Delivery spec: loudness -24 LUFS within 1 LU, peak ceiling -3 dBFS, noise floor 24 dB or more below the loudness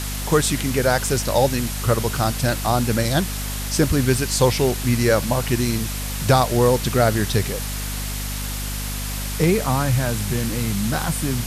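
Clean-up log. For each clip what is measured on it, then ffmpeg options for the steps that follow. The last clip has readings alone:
hum 50 Hz; harmonics up to 250 Hz; hum level -26 dBFS; noise floor -27 dBFS; noise floor target -45 dBFS; loudness -21.0 LUFS; peak -3.0 dBFS; loudness target -24.0 LUFS
-> -af "bandreject=f=50:t=h:w=4,bandreject=f=100:t=h:w=4,bandreject=f=150:t=h:w=4,bandreject=f=200:t=h:w=4,bandreject=f=250:t=h:w=4"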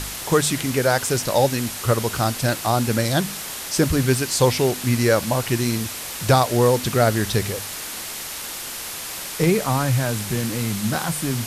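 hum none; noise floor -32 dBFS; noise floor target -46 dBFS
-> -af "afftdn=nr=14:nf=-32"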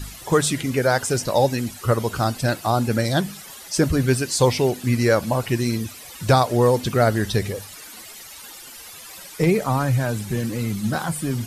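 noise floor -41 dBFS; noise floor target -46 dBFS
-> -af "afftdn=nr=6:nf=-41"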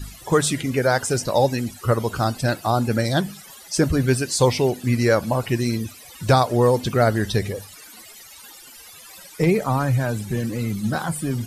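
noise floor -44 dBFS; noise floor target -46 dBFS
-> -af "afftdn=nr=6:nf=-44"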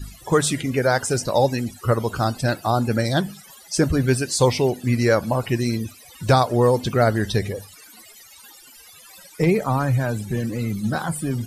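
noise floor -47 dBFS; loudness -21.5 LUFS; peak -4.5 dBFS; loudness target -24.0 LUFS
-> -af "volume=-2.5dB"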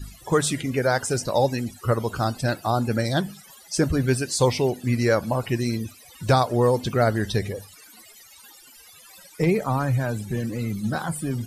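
loudness -24.0 LUFS; peak -7.0 dBFS; noise floor -49 dBFS

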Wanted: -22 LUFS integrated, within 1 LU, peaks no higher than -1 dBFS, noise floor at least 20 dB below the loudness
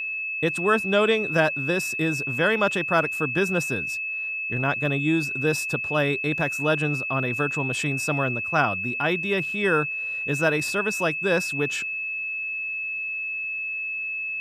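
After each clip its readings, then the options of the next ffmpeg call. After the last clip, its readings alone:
steady tone 2600 Hz; tone level -27 dBFS; loudness -24.0 LUFS; peak -7.0 dBFS; loudness target -22.0 LUFS
-> -af "bandreject=f=2.6k:w=30"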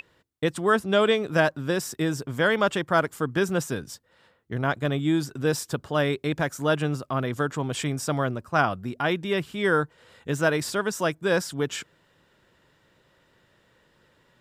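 steady tone none; loudness -26.0 LUFS; peak -7.5 dBFS; loudness target -22.0 LUFS
-> -af "volume=4dB"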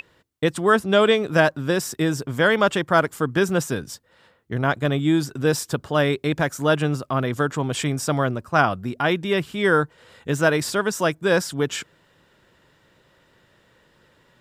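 loudness -22.0 LUFS; peak -3.5 dBFS; noise floor -61 dBFS

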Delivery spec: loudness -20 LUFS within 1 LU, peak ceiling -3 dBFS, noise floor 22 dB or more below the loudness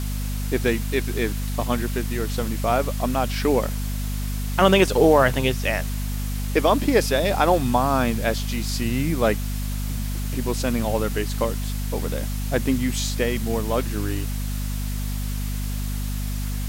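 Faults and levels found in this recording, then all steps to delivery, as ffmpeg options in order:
hum 50 Hz; harmonics up to 250 Hz; hum level -24 dBFS; noise floor -27 dBFS; noise floor target -46 dBFS; loudness -23.5 LUFS; peak -4.5 dBFS; loudness target -20.0 LUFS
-> -af "bandreject=f=50:t=h:w=6,bandreject=f=100:t=h:w=6,bandreject=f=150:t=h:w=6,bandreject=f=200:t=h:w=6,bandreject=f=250:t=h:w=6"
-af "afftdn=nr=19:nf=-27"
-af "volume=3.5dB,alimiter=limit=-3dB:level=0:latency=1"

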